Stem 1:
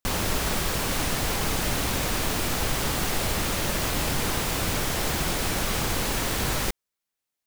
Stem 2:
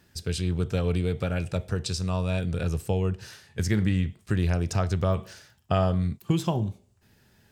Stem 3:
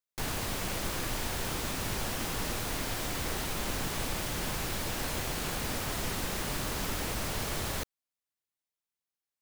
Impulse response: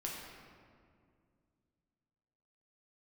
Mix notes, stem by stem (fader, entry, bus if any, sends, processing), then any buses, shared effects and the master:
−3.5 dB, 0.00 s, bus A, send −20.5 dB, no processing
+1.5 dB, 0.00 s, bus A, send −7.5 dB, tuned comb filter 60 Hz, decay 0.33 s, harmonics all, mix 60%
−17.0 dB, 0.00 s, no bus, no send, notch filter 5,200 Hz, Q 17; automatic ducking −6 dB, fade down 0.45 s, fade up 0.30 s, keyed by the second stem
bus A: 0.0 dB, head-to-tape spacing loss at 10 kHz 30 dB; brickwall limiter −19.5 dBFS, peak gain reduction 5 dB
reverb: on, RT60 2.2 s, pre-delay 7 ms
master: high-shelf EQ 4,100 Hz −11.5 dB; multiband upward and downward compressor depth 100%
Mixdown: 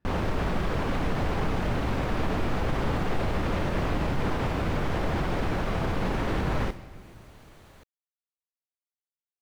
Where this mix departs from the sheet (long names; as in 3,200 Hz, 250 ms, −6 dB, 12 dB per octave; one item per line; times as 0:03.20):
stem 1 −3.5 dB → +5.5 dB
stem 2 +1.5 dB → −10.0 dB
master: missing multiband upward and downward compressor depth 100%